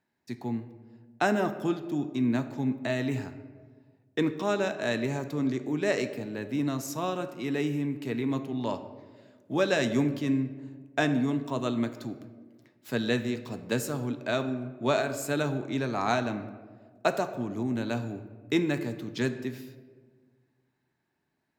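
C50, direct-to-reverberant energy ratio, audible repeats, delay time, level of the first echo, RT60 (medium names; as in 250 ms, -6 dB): 11.5 dB, 9.0 dB, no echo, no echo, no echo, 1.6 s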